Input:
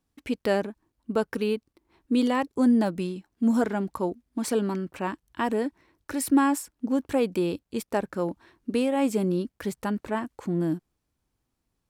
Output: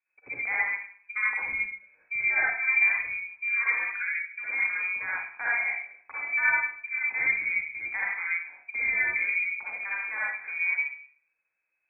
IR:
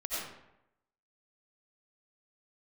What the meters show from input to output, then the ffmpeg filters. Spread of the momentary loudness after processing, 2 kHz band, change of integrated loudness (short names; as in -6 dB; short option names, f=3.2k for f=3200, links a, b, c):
10 LU, +15.5 dB, +0.5 dB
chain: -filter_complex "[0:a]lowshelf=f=170:g=-4.5[a];[1:a]atrim=start_sample=2205,asetrate=70560,aresample=44100[b];[a][b]afir=irnorm=-1:irlink=0,lowpass=f=2.2k:t=q:w=0.5098,lowpass=f=2.2k:t=q:w=0.6013,lowpass=f=2.2k:t=q:w=0.9,lowpass=f=2.2k:t=q:w=2.563,afreqshift=-2600"